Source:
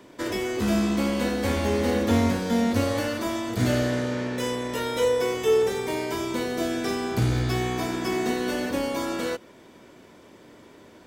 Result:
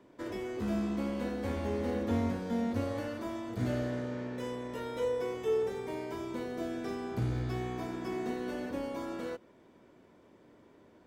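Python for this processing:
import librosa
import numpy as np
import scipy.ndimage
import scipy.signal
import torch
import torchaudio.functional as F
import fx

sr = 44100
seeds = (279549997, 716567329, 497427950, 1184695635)

y = fx.high_shelf(x, sr, hz=2200.0, db=-10.5)
y = y * librosa.db_to_amplitude(-9.0)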